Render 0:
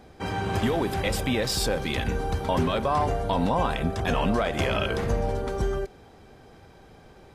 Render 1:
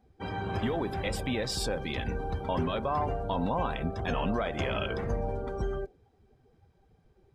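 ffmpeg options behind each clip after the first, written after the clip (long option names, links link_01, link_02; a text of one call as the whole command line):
ffmpeg -i in.wav -af "afftdn=noise_reduction=16:noise_floor=-39,volume=-5.5dB" out.wav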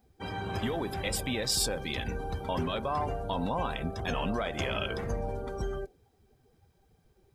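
ffmpeg -i in.wav -af "crystalizer=i=2.5:c=0,volume=-2dB" out.wav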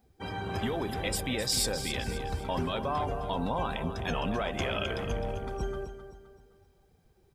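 ffmpeg -i in.wav -af "aecho=1:1:260|520|780|1040:0.299|0.119|0.0478|0.0191" out.wav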